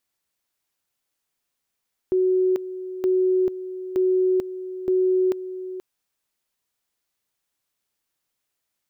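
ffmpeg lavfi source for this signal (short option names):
-f lavfi -i "aevalsrc='pow(10,(-16.5-13*gte(mod(t,0.92),0.44))/20)*sin(2*PI*371*t)':d=3.68:s=44100"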